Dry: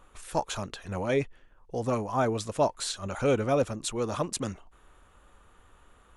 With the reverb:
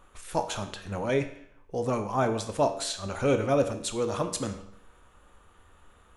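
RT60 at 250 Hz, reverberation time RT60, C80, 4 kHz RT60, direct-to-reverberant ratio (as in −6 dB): 0.70 s, 0.70 s, 13.0 dB, 0.65 s, 7.0 dB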